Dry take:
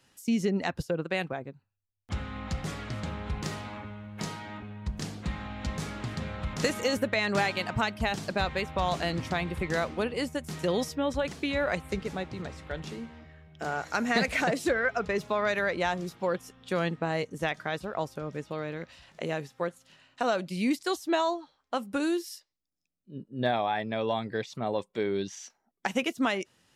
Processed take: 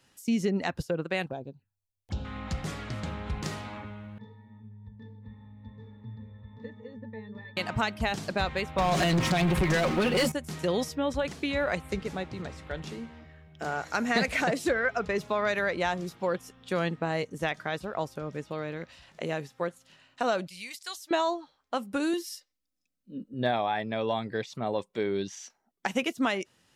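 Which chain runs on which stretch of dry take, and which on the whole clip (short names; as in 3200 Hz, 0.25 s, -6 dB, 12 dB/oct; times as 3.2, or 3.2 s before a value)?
1.26–2.25 bell 1200 Hz -11.5 dB 0.3 oct + envelope phaser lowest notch 200 Hz, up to 2000 Hz, full sweep at -37.5 dBFS
4.18–7.57 LPF 4000 Hz + octave resonator A, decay 0.22 s
8.78–10.32 comb 5.5 ms, depth 94% + compressor 10:1, threshold -26 dBFS + sample leveller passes 3
20.47–21.11 passive tone stack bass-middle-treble 10-0-10 + upward compressor, threshold -59 dBFS
22.13–23.34 bell 900 Hz -10 dB 0.25 oct + comb 3.9 ms, depth 74%
whole clip: dry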